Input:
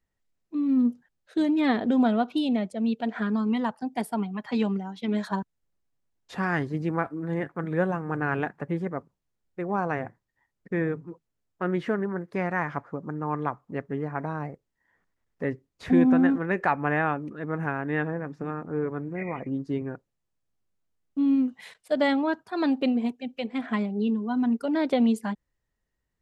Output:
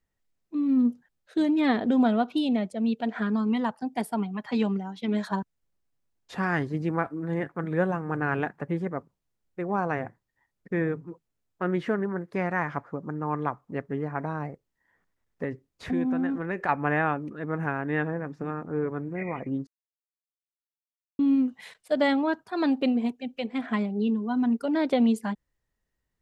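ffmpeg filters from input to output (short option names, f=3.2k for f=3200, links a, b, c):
-filter_complex "[0:a]asettb=1/sr,asplit=3[a][b][c];[a]atrim=end=15.444[d];[b]atrim=start=15.44:end=16.69,asetpts=PTS-STARTPTS,afade=t=in:d=0.004:c=qsin,afade=t=out:st=1.246:d=0.004:c=qsin,acompressor=threshold=-29dB:ratio=2:attack=3.2:release=140:knee=1:detection=peak[e];[c]atrim=start=16.686[f];[d][e]acrossfade=d=0.004:c1=hsin:c2=qsin[g];[g][f]acrossfade=d=0.004:c1=qsin:c2=hsin,asplit=3[h][i][j];[h]atrim=end=19.67,asetpts=PTS-STARTPTS,afade=t=out:st=19.666:d=0.004:c=hsin[k];[i]atrim=start=19.67:end=21.19,asetpts=PTS-STARTPTS,volume=0[l];[j]atrim=start=21.19,asetpts=PTS-STARTPTS,afade=t=in:d=0.004:c=hsin[m];[k][l][m]concat=n=3:v=0:a=1"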